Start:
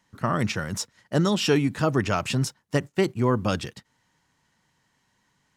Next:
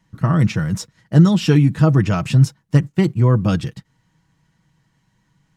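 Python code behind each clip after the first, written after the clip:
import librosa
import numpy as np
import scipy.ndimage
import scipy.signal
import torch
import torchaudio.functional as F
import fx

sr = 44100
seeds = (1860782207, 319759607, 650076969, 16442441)

y = fx.bass_treble(x, sr, bass_db=13, treble_db=-2)
y = y + 0.46 * np.pad(y, (int(6.2 * sr / 1000.0), 0))[:len(y)]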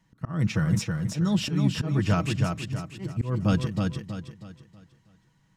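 y = fx.auto_swell(x, sr, attack_ms=298.0)
y = fx.echo_feedback(y, sr, ms=321, feedback_pct=37, wet_db=-4)
y = F.gain(torch.from_numpy(y), -4.5).numpy()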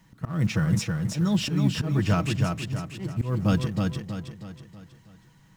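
y = fx.law_mismatch(x, sr, coded='mu')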